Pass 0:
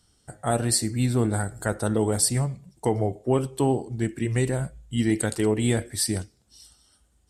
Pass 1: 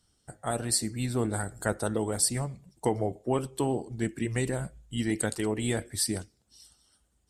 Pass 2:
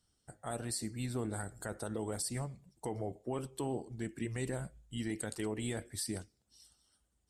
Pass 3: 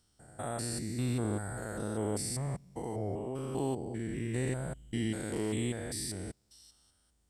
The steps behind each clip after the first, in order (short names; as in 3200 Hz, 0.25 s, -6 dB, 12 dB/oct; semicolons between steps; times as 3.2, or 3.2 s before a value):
harmonic-percussive split harmonic -6 dB; in parallel at -1 dB: vocal rider within 3 dB 0.5 s; on the sum: gain -7.5 dB
limiter -20 dBFS, peak gain reduction 9 dB; gain -7 dB
stepped spectrum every 0.2 s; gain +6.5 dB